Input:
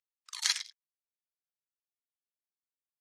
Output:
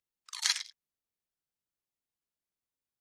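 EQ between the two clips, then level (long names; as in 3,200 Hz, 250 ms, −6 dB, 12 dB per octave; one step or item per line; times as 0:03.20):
low-shelf EQ 420 Hz +10 dB
0.0 dB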